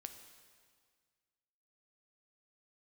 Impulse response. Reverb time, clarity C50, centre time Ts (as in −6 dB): 1.8 s, 8.5 dB, 24 ms